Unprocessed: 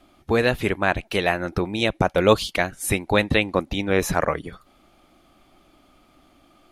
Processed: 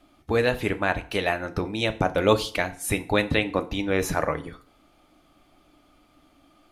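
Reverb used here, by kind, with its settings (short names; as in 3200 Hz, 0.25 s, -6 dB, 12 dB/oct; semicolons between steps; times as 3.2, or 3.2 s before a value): FDN reverb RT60 0.46 s, low-frequency decay 1×, high-frequency decay 0.85×, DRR 9 dB; gain -3.5 dB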